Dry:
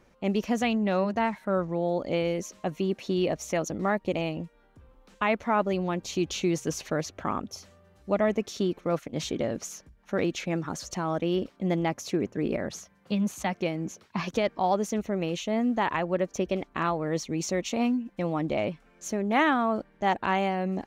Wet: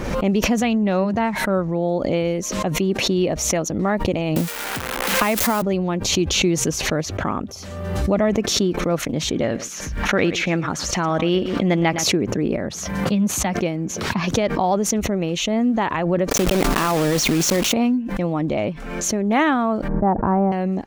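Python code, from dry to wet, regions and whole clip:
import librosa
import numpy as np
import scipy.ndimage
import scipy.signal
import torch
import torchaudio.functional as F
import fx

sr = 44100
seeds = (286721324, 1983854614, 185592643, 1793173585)

y = fx.chain(x, sr, fx.crossing_spikes(level_db=-23.0),
    fx.band_squash(depth_pct=100), at=(4.36, 5.62))
y = fx.chain(y, sr, fx.peak_eq(hz=2200.0, db=8.5, octaves=2.4),
    fx.echo_single(ms=113, db=-17.5), at=(9.42, 12.04))
y = fx.chain(y, sr, fx.block_float(bits=3),
    fx.peak_eq(hz=69.0, db=-12.0, octaves=1.2),
    fx.env_flatten(amount_pct=100), at=(16.31, 17.74))
y = fx.chain(y, sr, fx.lowpass(hz=1200.0, slope=24),
    fx.low_shelf(hz=250.0, db=7.5), at=(19.88, 20.52))
y = fx.low_shelf(y, sr, hz=390.0, db=5.0)
y = fx.pre_swell(y, sr, db_per_s=39.0)
y = F.gain(torch.from_numpy(y), 3.5).numpy()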